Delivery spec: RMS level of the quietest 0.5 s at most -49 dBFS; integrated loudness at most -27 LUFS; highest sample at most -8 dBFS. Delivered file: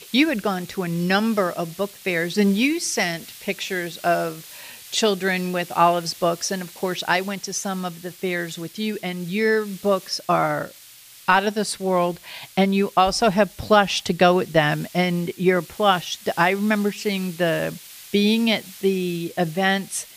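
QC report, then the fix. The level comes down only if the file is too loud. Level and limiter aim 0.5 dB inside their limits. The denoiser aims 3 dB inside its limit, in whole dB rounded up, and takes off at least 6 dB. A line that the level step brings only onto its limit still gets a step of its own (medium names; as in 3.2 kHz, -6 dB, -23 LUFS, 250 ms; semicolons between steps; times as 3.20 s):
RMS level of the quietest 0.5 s -46 dBFS: fail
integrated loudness -22.0 LUFS: fail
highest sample -4.5 dBFS: fail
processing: trim -5.5 dB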